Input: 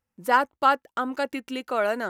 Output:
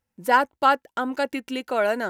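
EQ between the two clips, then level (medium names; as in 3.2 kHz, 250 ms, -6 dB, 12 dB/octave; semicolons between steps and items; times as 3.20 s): band-stop 1.2 kHz, Q 6.5; +2.5 dB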